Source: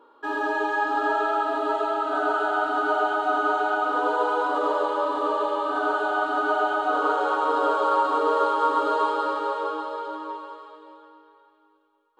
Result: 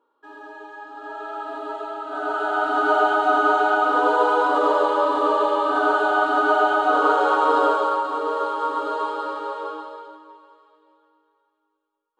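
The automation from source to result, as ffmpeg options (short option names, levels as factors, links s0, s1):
-af "volume=1.78,afade=t=in:st=0.95:d=0.57:silence=0.375837,afade=t=in:st=2.07:d=0.89:silence=0.281838,afade=t=out:st=7.58:d=0.43:silence=0.421697,afade=t=out:st=9.71:d=0.52:silence=0.334965"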